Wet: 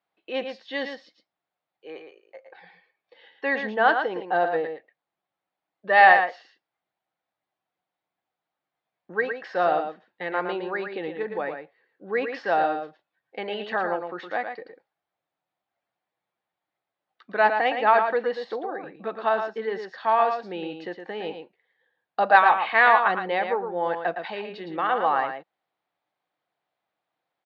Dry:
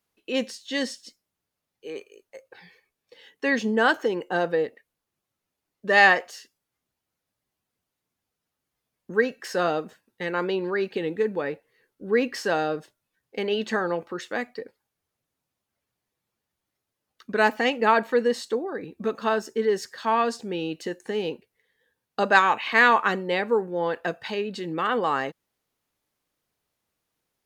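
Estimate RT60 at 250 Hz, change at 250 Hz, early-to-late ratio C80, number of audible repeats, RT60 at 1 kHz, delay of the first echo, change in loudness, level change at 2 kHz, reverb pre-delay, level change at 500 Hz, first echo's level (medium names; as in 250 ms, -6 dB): no reverb, -6.5 dB, no reverb, 1, no reverb, 113 ms, +0.5 dB, 0.0 dB, no reverb, -1.0 dB, -7.0 dB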